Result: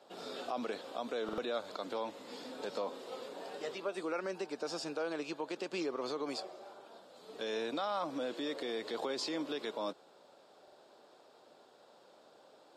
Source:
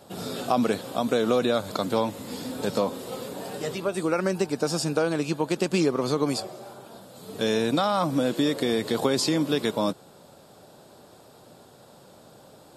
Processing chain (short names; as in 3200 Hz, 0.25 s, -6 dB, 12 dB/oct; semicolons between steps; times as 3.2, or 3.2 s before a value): limiter -17 dBFS, peak gain reduction 8 dB; three-band isolator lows -23 dB, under 290 Hz, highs -18 dB, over 6200 Hz; stuck buffer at 1.24/10.63, samples 2048, times 2; gain -8 dB